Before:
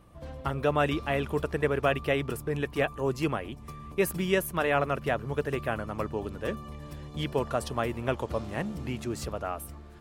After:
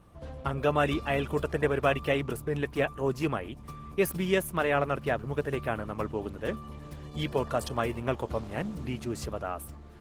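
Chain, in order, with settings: Opus 16 kbps 48 kHz

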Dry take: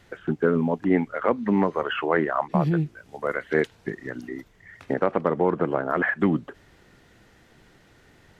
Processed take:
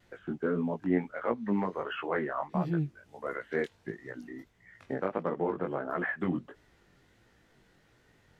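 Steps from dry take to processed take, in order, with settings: chorus 1.5 Hz, delay 16.5 ms, depth 5.8 ms; vibrato 2 Hz 42 cents; trim -6 dB

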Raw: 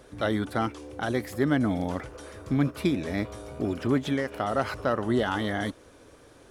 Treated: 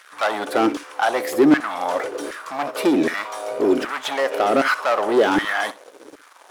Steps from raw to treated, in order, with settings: waveshaping leveller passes 3; LFO high-pass saw down 1.3 Hz 260–1600 Hz; flutter echo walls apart 10.8 m, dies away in 0.22 s

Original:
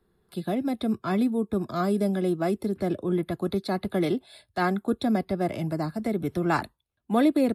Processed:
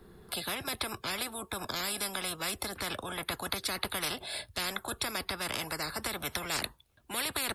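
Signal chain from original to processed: spectrum-flattening compressor 10:1; trim -2 dB

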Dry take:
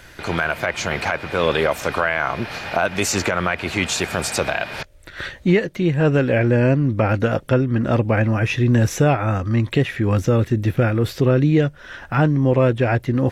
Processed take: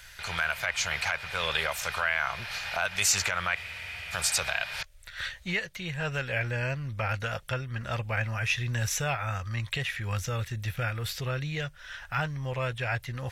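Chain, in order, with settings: amplifier tone stack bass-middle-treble 10-0-10; band-stop 1.1 kHz, Q 29; spectral freeze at 3.58 s, 0.55 s

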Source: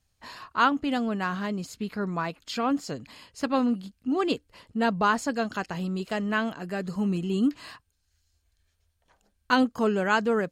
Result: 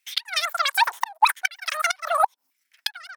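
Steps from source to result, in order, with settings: wide varispeed 3.32×; LFO high-pass saw down 0.8 Hz 810–2200 Hz; inverted gate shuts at -12 dBFS, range -27 dB; trim +6 dB

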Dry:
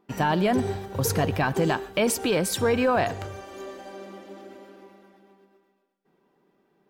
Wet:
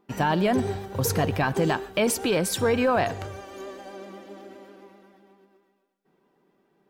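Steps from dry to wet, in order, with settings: vibrato 7.7 Hz 32 cents

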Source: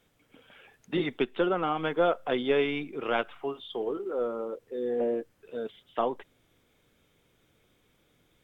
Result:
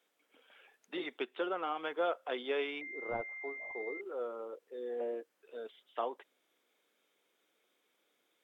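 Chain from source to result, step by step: Bessel high-pass 430 Hz, order 4; 2.81–4.01 s: class-D stage that switches slowly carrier 2.1 kHz; trim -6.5 dB

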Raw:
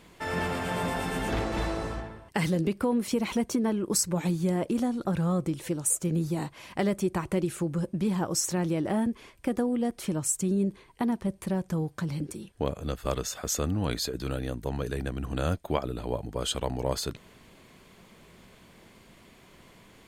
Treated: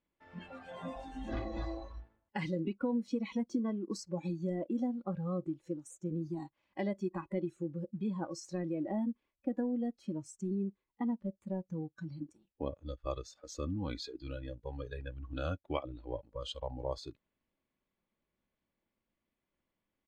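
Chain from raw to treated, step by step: companding laws mixed up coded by A; distance through air 170 m; comb 3.5 ms, depth 34%; 13.93–16.30 s: dynamic bell 2.7 kHz, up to +4 dB, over -49 dBFS, Q 0.82; spectral noise reduction 18 dB; trim -6.5 dB

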